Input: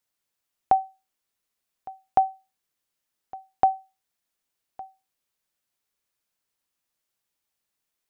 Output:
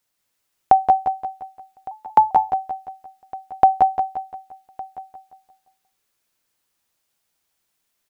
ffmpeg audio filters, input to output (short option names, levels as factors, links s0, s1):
-filter_complex "[0:a]asplit=2[s0][s1];[s1]aecho=0:1:174|348|522|696|870:0.473|0.213|0.0958|0.0431|0.0194[s2];[s0][s2]amix=inputs=2:normalize=0,asettb=1/sr,asplit=3[s3][s4][s5];[s3]atrim=end=1.914[s6];[s4]atrim=start=1.91:end=2.31,asetpts=PTS-STARTPTS,afade=t=in:d=0.004:c=qsin,afade=t=out:st=0.396:d=0.004:c=qsin,afreqshift=100[s7];[s5]atrim=start=2.306[s8];[s6][s7]acrossfade=d=0.004:c1=hsin:c2=qsin[s9];[s9][s8]acrossfade=d=0.004:c1=qsin:c2=hsin,asplit=2[s10][s11];[s11]aecho=0:1:186:0.501[s12];[s10][s12]amix=inputs=2:normalize=0,volume=2.11"